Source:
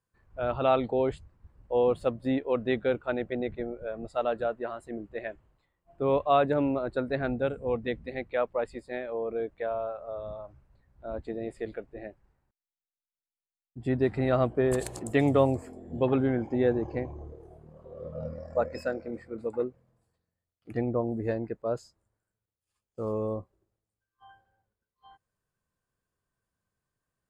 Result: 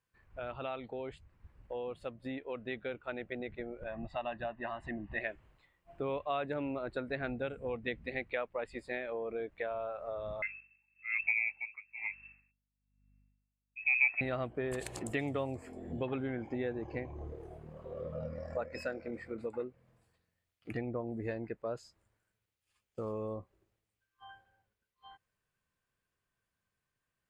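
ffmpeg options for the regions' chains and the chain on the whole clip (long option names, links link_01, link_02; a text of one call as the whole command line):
ffmpeg -i in.wav -filter_complex "[0:a]asettb=1/sr,asplit=3[link_01][link_02][link_03];[link_01]atrim=end=3.834[link_04];[link_02]atrim=start=3.83:end=5.21,asetpts=PTS-STARTPTS,afade=type=in:duration=0.004:curve=qsin,afade=type=out:start_time=1.376:duration=0.004:curve=qsin,lowpass=3000,aecho=1:1:1.1:0.82,atrim=end_sample=60858,acompressor=mode=upward:threshold=-38dB:ratio=2.5:attack=3.2:release=140:knee=2.83:detection=peak[link_05];[link_03]atrim=start=5.206[link_06];[link_04][link_05]acrossfade=duration=0.004:curve1=hsin:curve2=qsin[link_07];[link_07][link_06]acrossfade=duration=0.004:curve1=qsin:curve2=hsin,asettb=1/sr,asplit=3[link_08][link_09][link_10];[link_08]atrim=end=10.424[link_11];[link_09]atrim=start=10.42:end=14.21,asetpts=PTS-STARTPTS,afade=type=in:duration=0.004:curve=qsin,afade=type=out:start_time=3.786:duration=0.004:curve=qsin,lowpass=frequency=2300:width_type=q:width=0.5098,lowpass=frequency=2300:width_type=q:width=0.6013,lowpass=frequency=2300:width_type=q:width=0.9,lowpass=frequency=2300:width_type=q:width=2.563,afreqshift=-2700,aeval=exprs='val(0)+0.000447*(sin(2*PI*50*n/s)+sin(2*PI*2*50*n/s)/2+sin(2*PI*3*50*n/s)/3+sin(2*PI*4*50*n/s)/4+sin(2*PI*5*50*n/s)/5)':channel_layout=same,aeval=exprs='val(0)*pow(10,-22*(0.5-0.5*cos(2*PI*1.1*n/s))/20)':channel_layout=same[link_12];[link_10]atrim=start=14.206[link_13];[link_11][link_12]acrossfade=duration=0.004:curve1=hsin:curve2=qsin[link_14];[link_14][link_13]acrossfade=duration=0.004:curve1=qsin:curve2=hsin,acompressor=threshold=-40dB:ratio=3,equalizer=frequency=2400:width_type=o:width=1.4:gain=9,dynaudnorm=framelen=340:gausssize=21:maxgain=4.5dB,volume=-3dB" out.wav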